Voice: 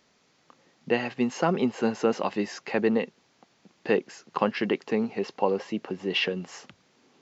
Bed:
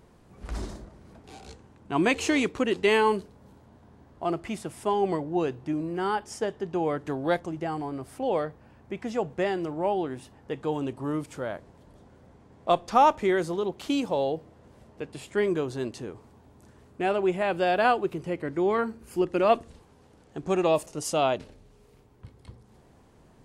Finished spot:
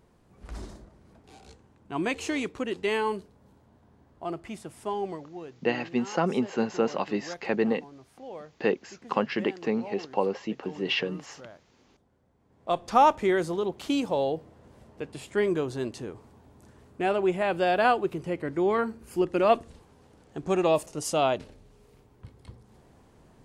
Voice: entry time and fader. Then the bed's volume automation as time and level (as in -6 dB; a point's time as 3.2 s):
4.75 s, -1.5 dB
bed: 4.99 s -5.5 dB
5.36 s -14.5 dB
12.34 s -14.5 dB
12.89 s 0 dB